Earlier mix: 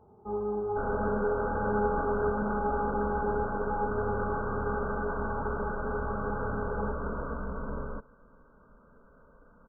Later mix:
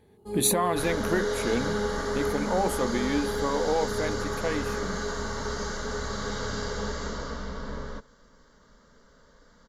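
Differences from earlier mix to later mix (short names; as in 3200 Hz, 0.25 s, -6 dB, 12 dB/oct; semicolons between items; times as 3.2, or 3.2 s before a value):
speech: unmuted; first sound: add band shelf 1300 Hz -8.5 dB 2.3 oct; master: remove brick-wall FIR low-pass 1600 Hz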